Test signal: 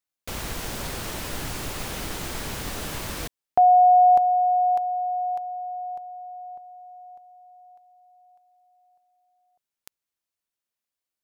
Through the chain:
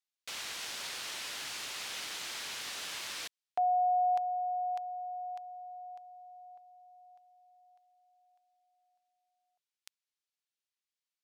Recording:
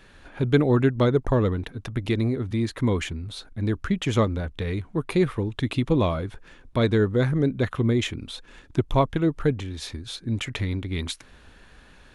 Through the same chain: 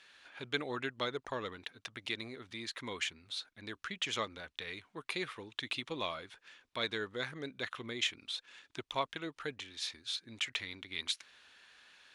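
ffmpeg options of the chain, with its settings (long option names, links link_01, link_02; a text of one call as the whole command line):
ffmpeg -i in.wav -af "bandpass=frequency=3800:width_type=q:width=0.74:csg=0,volume=-1.5dB" out.wav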